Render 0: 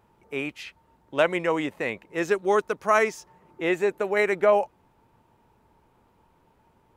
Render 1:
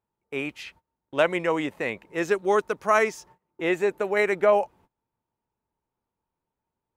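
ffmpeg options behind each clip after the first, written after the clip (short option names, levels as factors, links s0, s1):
-af "agate=range=0.0708:threshold=0.00282:ratio=16:detection=peak"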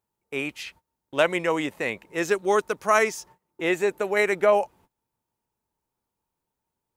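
-af "highshelf=f=4200:g=8.5"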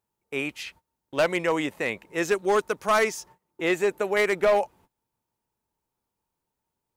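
-af "asoftclip=type=hard:threshold=0.168"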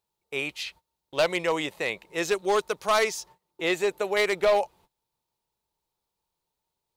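-af "equalizer=f=100:t=o:w=0.67:g=-6,equalizer=f=250:t=o:w=0.67:g=-9,equalizer=f=1600:t=o:w=0.67:g=-4,equalizer=f=4000:t=o:w=0.67:g=7"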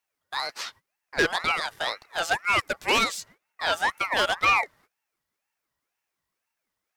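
-af "aeval=exprs='val(0)*sin(2*PI*1400*n/s+1400*0.3/2*sin(2*PI*2*n/s))':c=same,volume=1.41"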